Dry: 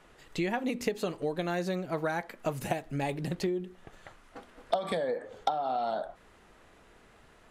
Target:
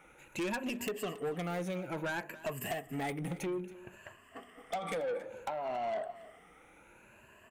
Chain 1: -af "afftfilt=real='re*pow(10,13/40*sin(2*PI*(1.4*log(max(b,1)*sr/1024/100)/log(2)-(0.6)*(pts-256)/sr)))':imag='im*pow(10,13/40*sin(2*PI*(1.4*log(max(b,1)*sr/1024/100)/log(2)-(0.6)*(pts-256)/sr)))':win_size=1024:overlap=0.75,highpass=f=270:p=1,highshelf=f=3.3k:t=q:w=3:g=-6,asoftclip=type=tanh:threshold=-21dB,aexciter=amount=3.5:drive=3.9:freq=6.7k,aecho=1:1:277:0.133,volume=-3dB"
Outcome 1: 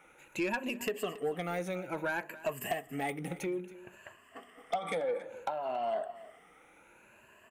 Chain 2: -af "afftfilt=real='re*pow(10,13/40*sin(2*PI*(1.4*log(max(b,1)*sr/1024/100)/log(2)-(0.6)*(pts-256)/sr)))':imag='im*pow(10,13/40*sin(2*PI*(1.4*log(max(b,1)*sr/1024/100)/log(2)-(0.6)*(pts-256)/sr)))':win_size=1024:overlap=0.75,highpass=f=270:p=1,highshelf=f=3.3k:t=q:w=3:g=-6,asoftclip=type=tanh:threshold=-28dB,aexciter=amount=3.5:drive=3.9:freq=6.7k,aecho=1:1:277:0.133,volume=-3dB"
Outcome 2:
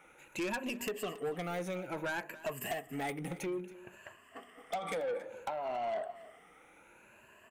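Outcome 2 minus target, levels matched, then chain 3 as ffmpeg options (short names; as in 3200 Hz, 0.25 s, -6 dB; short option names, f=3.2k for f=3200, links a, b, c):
125 Hz band -3.0 dB
-af "afftfilt=real='re*pow(10,13/40*sin(2*PI*(1.4*log(max(b,1)*sr/1024/100)/log(2)-(0.6)*(pts-256)/sr)))':imag='im*pow(10,13/40*sin(2*PI*(1.4*log(max(b,1)*sr/1024/100)/log(2)-(0.6)*(pts-256)/sr)))':win_size=1024:overlap=0.75,highpass=f=97:p=1,highshelf=f=3.3k:t=q:w=3:g=-6,asoftclip=type=tanh:threshold=-28dB,aexciter=amount=3.5:drive=3.9:freq=6.7k,aecho=1:1:277:0.133,volume=-3dB"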